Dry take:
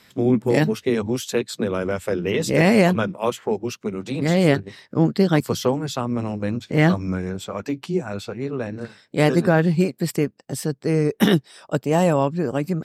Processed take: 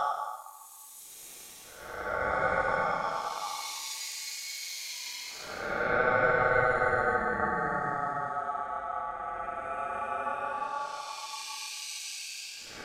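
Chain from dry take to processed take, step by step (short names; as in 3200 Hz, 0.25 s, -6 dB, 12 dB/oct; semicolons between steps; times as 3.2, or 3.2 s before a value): Paulstretch 23×, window 0.05 s, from 5.4; ring modulator 1000 Hz; gain -6 dB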